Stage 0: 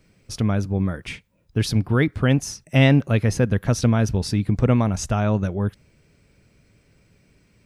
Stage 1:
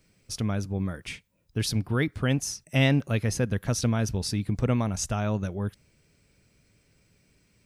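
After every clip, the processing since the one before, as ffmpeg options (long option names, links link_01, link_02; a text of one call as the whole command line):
ffmpeg -i in.wav -af "highshelf=frequency=3600:gain=8.5,volume=-7dB" out.wav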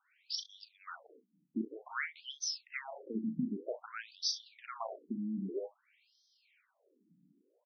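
ffmpeg -i in.wav -af "acompressor=threshold=-27dB:ratio=6,aecho=1:1:36|63:0.398|0.2,afftfilt=real='re*between(b*sr/1024,220*pow(4500/220,0.5+0.5*sin(2*PI*0.52*pts/sr))/1.41,220*pow(4500/220,0.5+0.5*sin(2*PI*0.52*pts/sr))*1.41)':imag='im*between(b*sr/1024,220*pow(4500/220,0.5+0.5*sin(2*PI*0.52*pts/sr))/1.41,220*pow(4500/220,0.5+0.5*sin(2*PI*0.52*pts/sr))*1.41)':win_size=1024:overlap=0.75,volume=2dB" out.wav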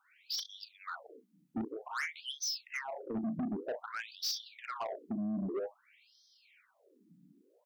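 ffmpeg -i in.wav -af "asoftclip=type=tanh:threshold=-37.5dB,volume=6dB" out.wav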